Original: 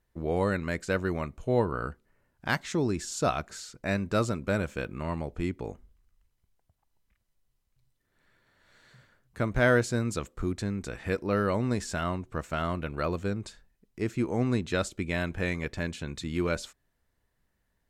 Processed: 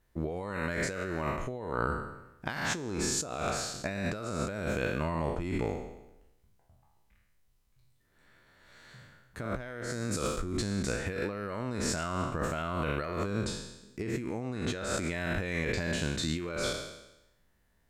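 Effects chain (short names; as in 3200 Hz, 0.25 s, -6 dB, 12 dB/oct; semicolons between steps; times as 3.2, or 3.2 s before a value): spectral trails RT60 0.93 s; negative-ratio compressor -32 dBFS, ratio -1; gain -1.5 dB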